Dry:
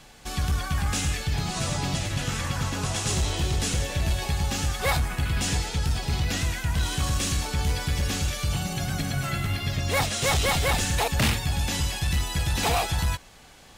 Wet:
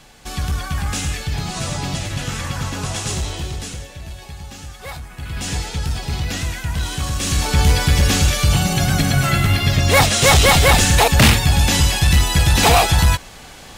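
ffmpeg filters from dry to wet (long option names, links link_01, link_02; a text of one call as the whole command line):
ffmpeg -i in.wav -af "volume=23dB,afade=type=out:start_time=2.98:duration=0.94:silence=0.266073,afade=type=in:start_time=5.12:duration=0.47:silence=0.281838,afade=type=in:start_time=7.18:duration=0.4:silence=0.375837" out.wav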